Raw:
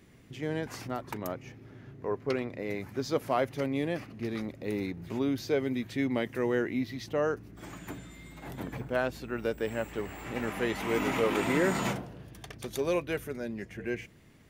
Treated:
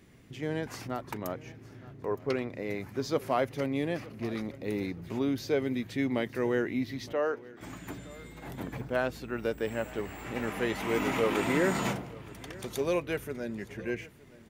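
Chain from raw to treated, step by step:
0:07.13–0:07.61: three-way crossover with the lows and the highs turned down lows −23 dB, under 270 Hz, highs −14 dB, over 4,700 Hz
repeating echo 916 ms, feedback 35%, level −20.5 dB

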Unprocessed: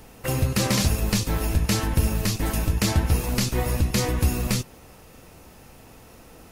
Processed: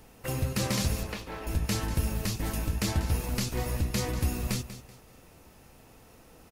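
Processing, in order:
0:01.03–0:01.47: three-way crossover with the lows and the highs turned down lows −14 dB, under 320 Hz, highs −19 dB, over 3,500 Hz
on a send: repeating echo 191 ms, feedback 31%, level −13 dB
on the sum: level −7 dB

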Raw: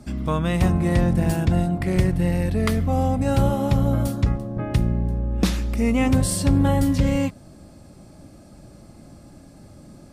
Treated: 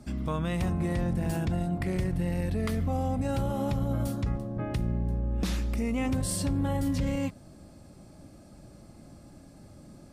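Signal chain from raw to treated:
brickwall limiter −16 dBFS, peak gain reduction 7 dB
level −5 dB

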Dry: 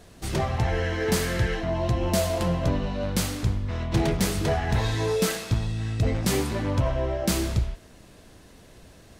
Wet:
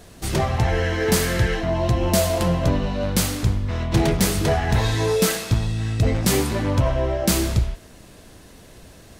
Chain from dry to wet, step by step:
high-shelf EQ 8,800 Hz +5 dB
level +4.5 dB

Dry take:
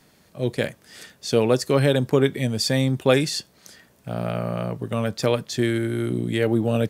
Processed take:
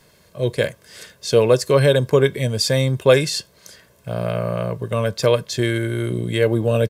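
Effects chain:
comb filter 1.9 ms, depth 53%
level +2.5 dB

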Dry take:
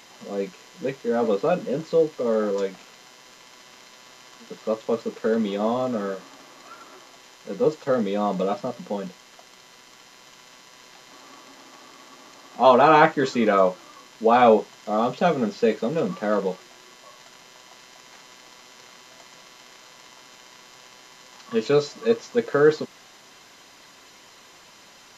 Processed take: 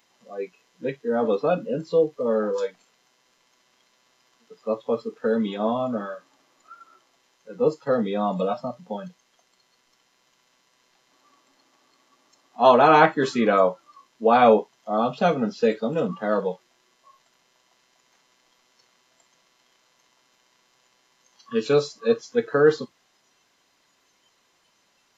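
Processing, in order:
noise reduction from a noise print of the clip's start 16 dB

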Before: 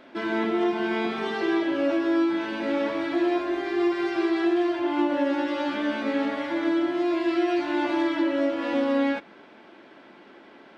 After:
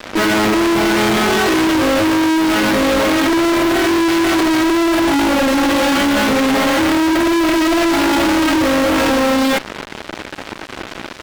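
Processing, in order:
wrong playback speed 25 fps video run at 24 fps
fuzz pedal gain 46 dB, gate −46 dBFS

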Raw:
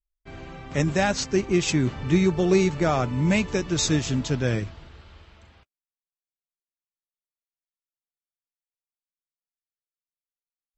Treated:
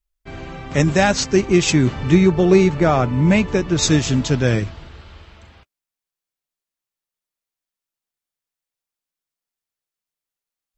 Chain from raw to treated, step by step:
0:02.14–0:03.81: high-shelf EQ 5,200 Hz → 3,800 Hz −11 dB
level +7 dB

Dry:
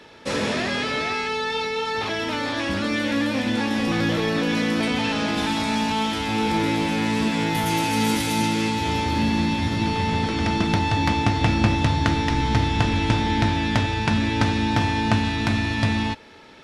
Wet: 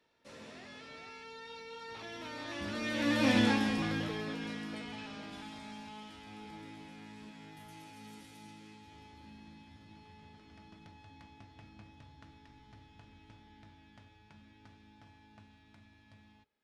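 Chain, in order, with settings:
source passing by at 0:03.35, 11 m/s, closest 2 metres
mains-hum notches 60/120/180/240/300/360/420/480/540 Hz
level −2 dB

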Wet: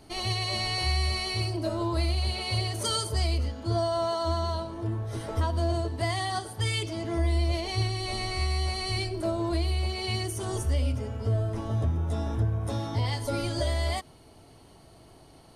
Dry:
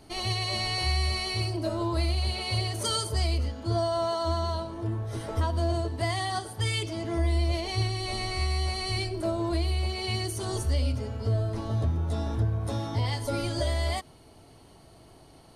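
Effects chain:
0:10.23–0:12.70: parametric band 4,300 Hz −11.5 dB 0.22 octaves

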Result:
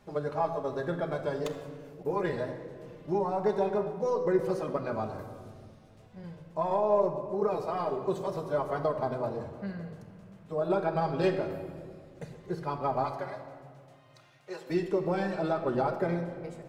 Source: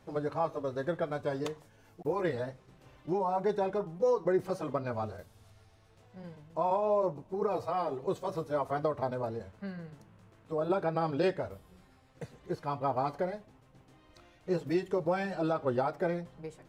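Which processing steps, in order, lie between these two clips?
stylus tracing distortion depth 0.044 ms
0:13.04–0:14.70: high-pass filter 690 Hz 12 dB per octave
rectangular room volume 3,500 cubic metres, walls mixed, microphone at 1.3 metres

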